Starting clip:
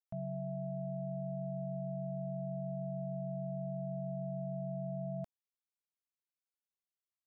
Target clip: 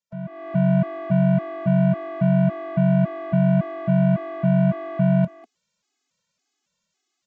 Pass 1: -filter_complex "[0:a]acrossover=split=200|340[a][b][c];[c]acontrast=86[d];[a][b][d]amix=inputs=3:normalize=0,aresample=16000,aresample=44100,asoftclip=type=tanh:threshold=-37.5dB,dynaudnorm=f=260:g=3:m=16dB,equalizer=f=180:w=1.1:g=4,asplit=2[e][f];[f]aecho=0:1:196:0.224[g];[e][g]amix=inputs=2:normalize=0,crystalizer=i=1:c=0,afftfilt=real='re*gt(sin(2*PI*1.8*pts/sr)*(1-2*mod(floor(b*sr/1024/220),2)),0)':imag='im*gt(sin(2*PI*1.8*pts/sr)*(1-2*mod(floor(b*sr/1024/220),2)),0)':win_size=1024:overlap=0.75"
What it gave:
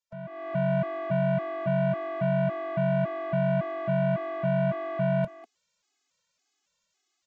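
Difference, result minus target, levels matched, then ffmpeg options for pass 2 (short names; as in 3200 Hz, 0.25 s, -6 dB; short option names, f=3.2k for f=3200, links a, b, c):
250 Hz band -3.5 dB
-filter_complex "[0:a]acrossover=split=200|340[a][b][c];[c]acontrast=86[d];[a][b][d]amix=inputs=3:normalize=0,aresample=16000,aresample=44100,asoftclip=type=tanh:threshold=-37.5dB,dynaudnorm=f=260:g=3:m=16dB,equalizer=f=180:w=1.1:g=15,asplit=2[e][f];[f]aecho=0:1:196:0.224[g];[e][g]amix=inputs=2:normalize=0,crystalizer=i=1:c=0,afftfilt=real='re*gt(sin(2*PI*1.8*pts/sr)*(1-2*mod(floor(b*sr/1024/220),2)),0)':imag='im*gt(sin(2*PI*1.8*pts/sr)*(1-2*mod(floor(b*sr/1024/220),2)),0)':win_size=1024:overlap=0.75"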